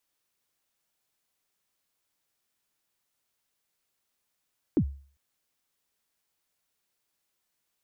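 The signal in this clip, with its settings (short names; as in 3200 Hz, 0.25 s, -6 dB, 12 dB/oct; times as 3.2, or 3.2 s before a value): kick drum length 0.40 s, from 370 Hz, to 69 Hz, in 73 ms, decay 0.43 s, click off, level -16.5 dB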